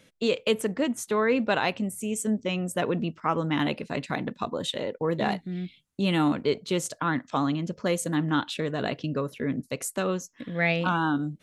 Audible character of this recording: noise floor -63 dBFS; spectral tilt -5.0 dB/octave

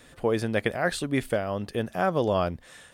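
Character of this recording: noise floor -53 dBFS; spectral tilt -5.0 dB/octave

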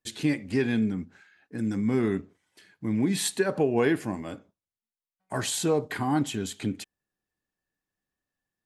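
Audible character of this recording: noise floor -95 dBFS; spectral tilt -5.0 dB/octave

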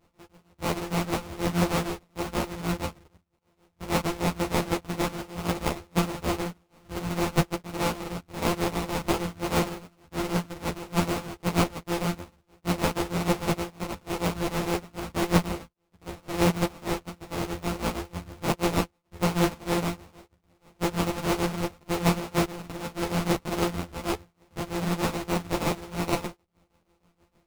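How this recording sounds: a buzz of ramps at a fixed pitch in blocks of 256 samples; tremolo triangle 6.4 Hz, depth 90%; aliases and images of a low sample rate 1.7 kHz, jitter 20%; a shimmering, thickened sound

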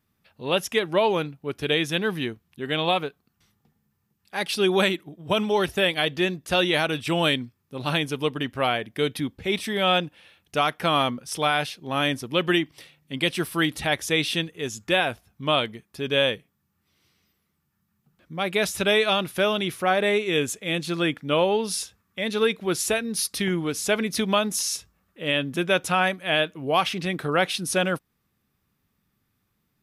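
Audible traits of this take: noise floor -74 dBFS; spectral tilt -3.5 dB/octave

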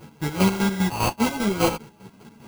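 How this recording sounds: a buzz of ramps at a fixed pitch in blocks of 16 samples; chopped level 5 Hz, depth 65%, duty 40%; aliases and images of a low sample rate 1.8 kHz, jitter 0%; a shimmering, thickened sound

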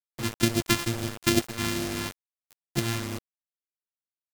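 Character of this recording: a buzz of ramps at a fixed pitch in blocks of 128 samples; phasing stages 2, 2.3 Hz, lowest notch 550–1100 Hz; a quantiser's noise floor 6-bit, dither none; AAC

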